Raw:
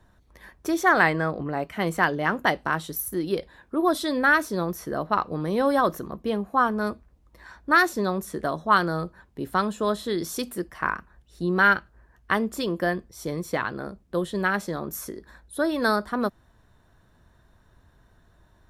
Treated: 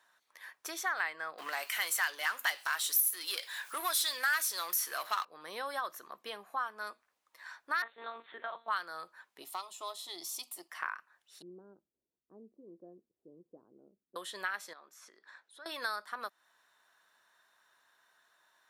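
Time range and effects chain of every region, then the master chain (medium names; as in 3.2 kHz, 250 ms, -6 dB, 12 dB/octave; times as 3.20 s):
1.38–5.25 s: tilt EQ +4.5 dB/octave + power-law waveshaper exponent 0.7
7.82–8.68 s: block-companded coder 7-bit + doubling 37 ms -12 dB + monotone LPC vocoder at 8 kHz 230 Hz
9.42–10.70 s: partial rectifier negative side -3 dB + static phaser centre 320 Hz, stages 8 + tape noise reduction on one side only encoder only
11.42–14.16 s: overload inside the chain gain 12.5 dB + inverse Chebyshev low-pass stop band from 2.1 kHz, stop band 80 dB
14.73–15.66 s: compression 3:1, threshold -44 dBFS + brick-wall FIR high-pass 160 Hz + distance through air 92 m
whole clip: high-pass 1.2 kHz 12 dB/octave; compression 2:1, threshold -40 dBFS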